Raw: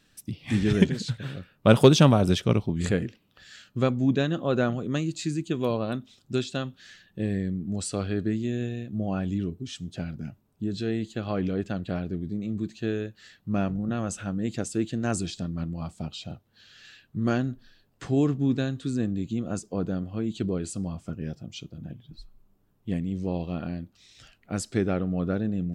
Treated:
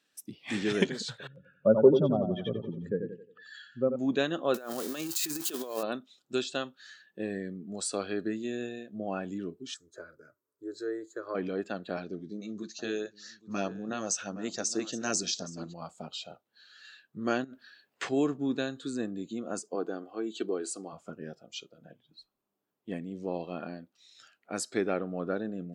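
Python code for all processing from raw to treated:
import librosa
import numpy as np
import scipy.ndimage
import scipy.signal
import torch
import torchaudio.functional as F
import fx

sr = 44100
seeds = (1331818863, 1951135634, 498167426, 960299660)

y = fx.chain(x, sr, fx.spec_expand(power=2.1),
    fx.echo_feedback(ms=89, feedback_pct=45, wet_db=-7),
    fx.env_lowpass_down(base_hz=1300.0, full_db=-17.0), at=(1.27, 3.96))
y = fx.chain(y, sr, fx.crossing_spikes(level_db=-26.0),
    fx.highpass(hz=220.0, slope=6),
    fx.over_compress(threshold_db=-31.0, ratio=-0.5), at=(4.54, 5.83))
y = fx.chain(y, sr, fx.peak_eq(hz=3300.0, db=-5.0, octaves=1.4),
    fx.fixed_phaser(hz=760.0, stages=6), at=(9.74, 11.35))
y = fx.chain(y, sr, fx.echo_single(ms=817, db=-15.0),
    fx.filter_lfo_notch(shape='saw_up', hz=4.6, low_hz=260.0, high_hz=3600.0, q=1.9),
    fx.lowpass_res(hz=5900.0, q=4.6), at=(11.97, 15.74))
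y = fx.chain(y, sr, fx.over_compress(threshold_db=-37.0, ratio=-1.0),
    fx.peak_eq(hz=2300.0, db=7.0, octaves=1.1), at=(17.44, 18.09))
y = fx.chain(y, sr, fx.highpass(hz=180.0, slope=12),
    fx.comb(ms=2.6, depth=0.4), at=(19.75, 20.93))
y = fx.noise_reduce_blind(y, sr, reduce_db=9)
y = scipy.signal.sosfilt(scipy.signal.butter(2, 340.0, 'highpass', fs=sr, output='sos'), y)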